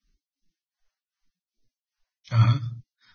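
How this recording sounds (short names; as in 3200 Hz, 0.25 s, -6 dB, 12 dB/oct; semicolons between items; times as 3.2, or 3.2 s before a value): tremolo triangle 2.6 Hz, depth 95%; phasing stages 2, 0.8 Hz, lowest notch 270–1000 Hz; Vorbis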